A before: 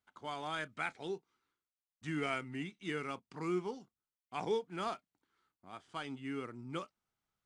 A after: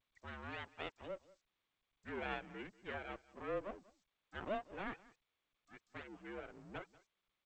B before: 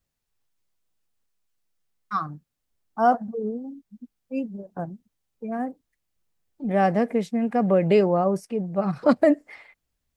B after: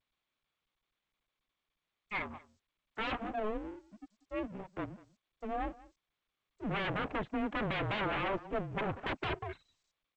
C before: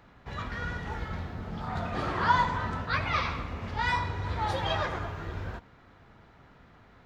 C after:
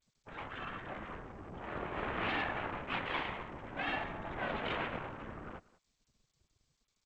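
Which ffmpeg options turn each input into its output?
-filter_complex "[0:a]afftfilt=real='re*gte(hypot(re,im),0.0112)':imag='im*gte(hypot(re,im),0.0112)':win_size=1024:overlap=0.75,aeval=exprs='0.447*(cos(1*acos(clip(val(0)/0.447,-1,1)))-cos(1*PI/2))+0.02*(cos(2*acos(clip(val(0)/0.447,-1,1)))-cos(2*PI/2))+0.0355*(cos(3*acos(clip(val(0)/0.447,-1,1)))-cos(3*PI/2))+0.0251*(cos(6*acos(clip(val(0)/0.447,-1,1)))-cos(6*PI/2))+0.00355*(cos(7*acos(clip(val(0)/0.447,-1,1)))-cos(7*PI/2))':c=same,aecho=1:1:190:0.0891,acrossover=split=1800[a][b];[a]aeval=exprs='0.0668*(abs(mod(val(0)/0.0668+3,4)-2)-1)':c=same[c];[c][b]amix=inputs=2:normalize=0,adynamicequalizer=threshold=0.00398:dfrequency=360:dqfactor=1.7:tfrequency=360:tqfactor=1.7:attack=5:release=100:ratio=0.375:range=2.5:mode=boostabove:tftype=bell,aresample=16000,aeval=exprs='abs(val(0))':c=same,aresample=44100,highpass=f=240:t=q:w=0.5412,highpass=f=240:t=q:w=1.307,lowpass=f=3.4k:t=q:w=0.5176,lowpass=f=3.4k:t=q:w=0.7071,lowpass=f=3.4k:t=q:w=1.932,afreqshift=-210" -ar 16000 -c:a g722

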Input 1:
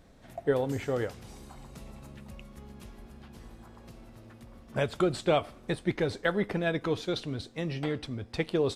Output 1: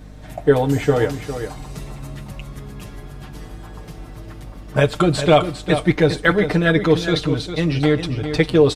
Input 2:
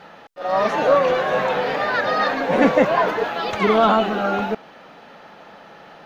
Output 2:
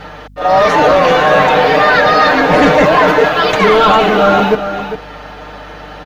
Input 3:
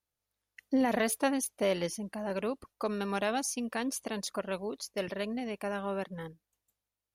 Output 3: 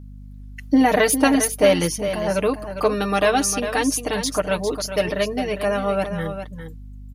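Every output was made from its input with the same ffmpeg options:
-filter_complex "[0:a]aecho=1:1:6.6:0.79,aeval=exprs='val(0)+0.00398*(sin(2*PI*50*n/s)+sin(2*PI*2*50*n/s)/2+sin(2*PI*3*50*n/s)/3+sin(2*PI*4*50*n/s)/4+sin(2*PI*5*50*n/s)/5)':c=same,apsyclip=14.5dB,asplit=2[a][b];[b]aecho=0:1:403:0.335[c];[a][c]amix=inputs=2:normalize=0,volume=-4dB"

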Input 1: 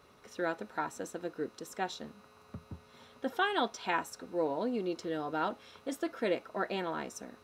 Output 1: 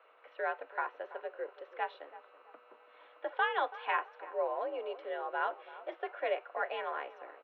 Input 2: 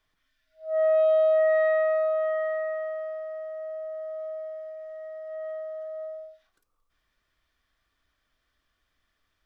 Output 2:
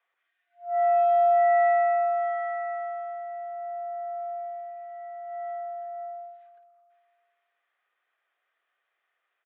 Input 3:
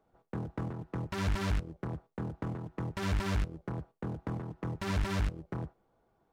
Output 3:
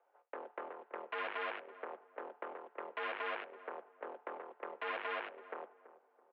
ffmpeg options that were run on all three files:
-filter_complex "[0:a]asplit=2[a][b];[b]adelay=331,lowpass=f=1.2k:p=1,volume=-14.5dB,asplit=2[c][d];[d]adelay=331,lowpass=f=1.2k:p=1,volume=0.38,asplit=2[e][f];[f]adelay=331,lowpass=f=1.2k:p=1,volume=0.38,asplit=2[g][h];[h]adelay=331,lowpass=f=1.2k:p=1,volume=0.38[i];[a][c][e][g][i]amix=inputs=5:normalize=0,highpass=f=410:t=q:w=0.5412,highpass=f=410:t=q:w=1.307,lowpass=f=2.9k:t=q:w=0.5176,lowpass=f=2.9k:t=q:w=0.7071,lowpass=f=2.9k:t=q:w=1.932,afreqshift=64"

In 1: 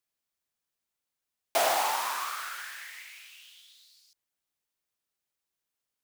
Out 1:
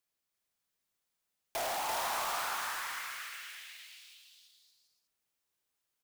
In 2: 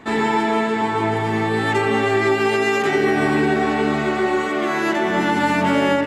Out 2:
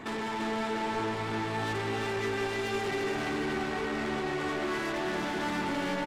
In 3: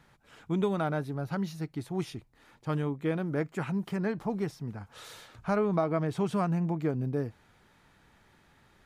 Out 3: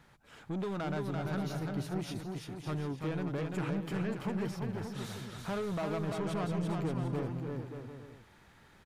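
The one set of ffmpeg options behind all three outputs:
-af "acompressor=threshold=-27dB:ratio=2.5,asoftclip=type=tanh:threshold=-32dB,aecho=1:1:340|578|744.6|861.2|942.9:0.631|0.398|0.251|0.158|0.1"

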